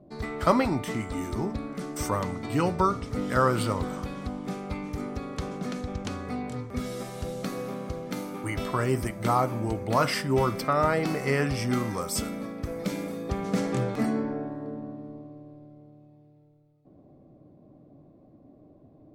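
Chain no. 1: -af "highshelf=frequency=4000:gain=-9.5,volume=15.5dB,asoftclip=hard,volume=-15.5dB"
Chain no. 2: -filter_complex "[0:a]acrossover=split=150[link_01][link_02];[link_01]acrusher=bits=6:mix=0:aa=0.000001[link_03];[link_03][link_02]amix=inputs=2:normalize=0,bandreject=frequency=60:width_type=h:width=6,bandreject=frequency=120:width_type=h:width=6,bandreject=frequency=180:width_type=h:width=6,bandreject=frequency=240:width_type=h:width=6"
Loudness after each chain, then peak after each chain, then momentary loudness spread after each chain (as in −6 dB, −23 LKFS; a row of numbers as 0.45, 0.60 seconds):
−30.0, −29.5 LKFS; −15.5, −6.5 dBFS; 10, 11 LU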